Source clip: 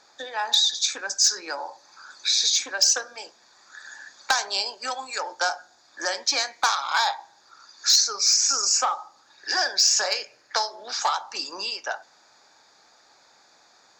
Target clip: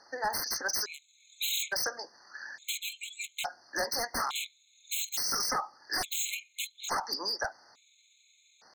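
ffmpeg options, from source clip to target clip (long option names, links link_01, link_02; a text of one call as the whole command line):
ffmpeg -i in.wav -af "aeval=exprs='0.0708*(abs(mod(val(0)/0.0708+3,4)-2)-1)':channel_layout=same,atempo=1.6,afftfilt=real='re*gt(sin(2*PI*0.58*pts/sr)*(1-2*mod(floor(b*sr/1024/2100),2)),0)':imag='im*gt(sin(2*PI*0.58*pts/sr)*(1-2*mod(floor(b*sr/1024/2100),2)),0)':win_size=1024:overlap=0.75" out.wav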